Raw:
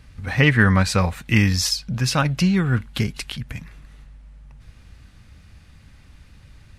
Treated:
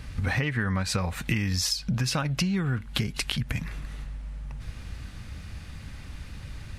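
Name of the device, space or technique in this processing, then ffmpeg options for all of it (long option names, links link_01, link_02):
serial compression, leveller first: -af "acompressor=threshold=-21dB:ratio=2.5,acompressor=threshold=-32dB:ratio=6,volume=7.5dB"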